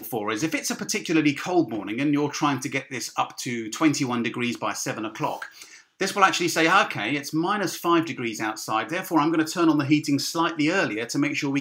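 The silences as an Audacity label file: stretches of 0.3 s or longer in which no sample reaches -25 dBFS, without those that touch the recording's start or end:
5.430000	6.010000	silence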